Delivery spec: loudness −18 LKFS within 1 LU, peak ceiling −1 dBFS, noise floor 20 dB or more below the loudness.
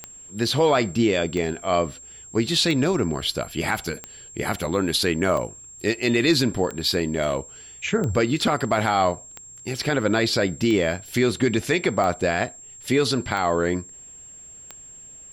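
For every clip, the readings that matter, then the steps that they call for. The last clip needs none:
number of clicks 12; interfering tone 7,500 Hz; level of the tone −41 dBFS; integrated loudness −23.0 LKFS; sample peak −9.5 dBFS; target loudness −18.0 LKFS
→ click removal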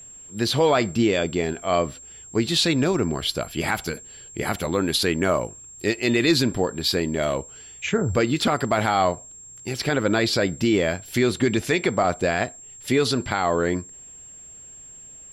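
number of clicks 0; interfering tone 7,500 Hz; level of the tone −41 dBFS
→ notch filter 7,500 Hz, Q 30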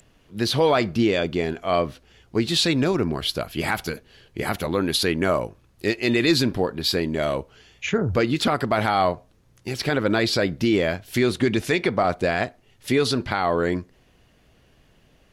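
interfering tone none found; integrated loudness −23.0 LKFS; sample peak −9.5 dBFS; target loudness −18.0 LKFS
→ level +5 dB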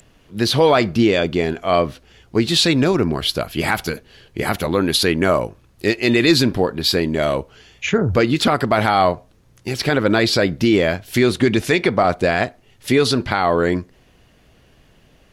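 integrated loudness −18.0 LKFS; sample peak −4.5 dBFS; background noise floor −54 dBFS

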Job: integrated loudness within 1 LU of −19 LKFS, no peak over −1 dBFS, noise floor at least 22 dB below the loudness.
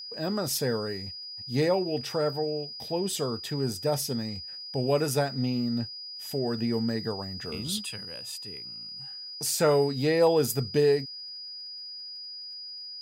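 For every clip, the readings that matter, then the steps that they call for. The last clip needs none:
crackle rate 38 per second; interfering tone 4,900 Hz; level of the tone −38 dBFS; integrated loudness −29.0 LKFS; sample peak −11.5 dBFS; target loudness −19.0 LKFS
→ click removal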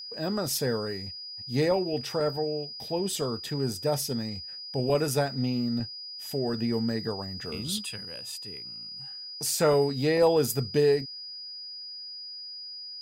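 crackle rate 0 per second; interfering tone 4,900 Hz; level of the tone −38 dBFS
→ notch filter 4,900 Hz, Q 30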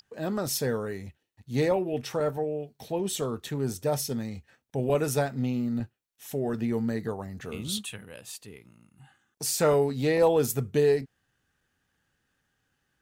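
interfering tone none found; integrated loudness −28.5 LKFS; sample peak −12.0 dBFS; target loudness −19.0 LKFS
→ level +9.5 dB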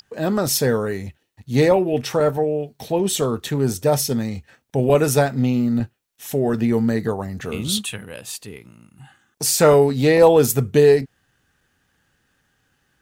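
integrated loudness −19.0 LKFS; sample peak −2.5 dBFS; background noise floor −68 dBFS

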